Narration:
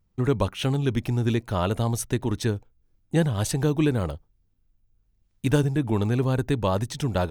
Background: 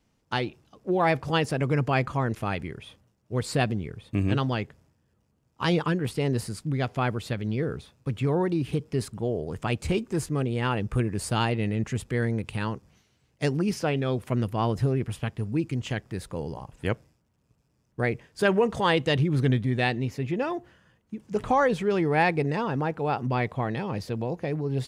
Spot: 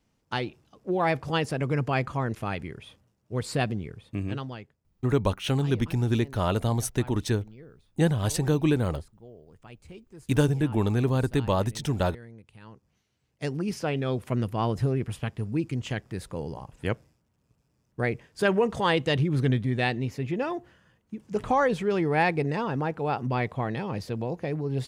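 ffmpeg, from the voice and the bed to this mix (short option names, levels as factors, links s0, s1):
-filter_complex "[0:a]adelay=4850,volume=0.891[s0];[1:a]volume=7.08,afade=t=out:st=3.82:d=0.96:silence=0.125893,afade=t=in:st=12.62:d=1.49:silence=0.112202[s1];[s0][s1]amix=inputs=2:normalize=0"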